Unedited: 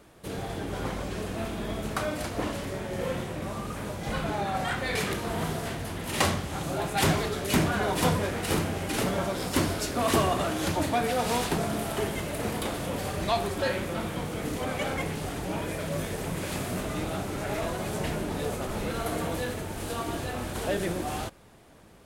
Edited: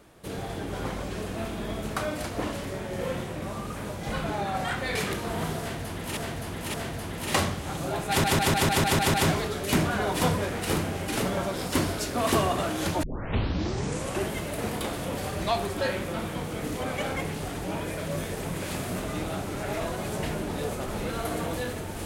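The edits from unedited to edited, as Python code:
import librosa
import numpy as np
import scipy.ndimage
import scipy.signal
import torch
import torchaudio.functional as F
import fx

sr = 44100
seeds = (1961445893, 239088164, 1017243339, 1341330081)

y = fx.edit(x, sr, fx.repeat(start_s=5.6, length_s=0.57, count=3),
    fx.stutter(start_s=6.95, slice_s=0.15, count=8),
    fx.tape_start(start_s=10.84, length_s=1.28), tone=tone)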